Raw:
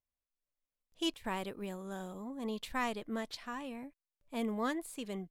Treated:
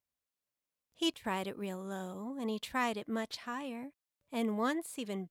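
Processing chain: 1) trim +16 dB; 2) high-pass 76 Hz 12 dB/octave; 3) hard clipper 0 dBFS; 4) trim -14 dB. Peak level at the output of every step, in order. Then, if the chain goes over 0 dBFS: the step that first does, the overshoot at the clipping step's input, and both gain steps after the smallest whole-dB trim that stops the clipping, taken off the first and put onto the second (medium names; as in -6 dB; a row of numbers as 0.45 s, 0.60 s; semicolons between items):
-6.5 dBFS, -6.0 dBFS, -6.0 dBFS, -20.0 dBFS; nothing clips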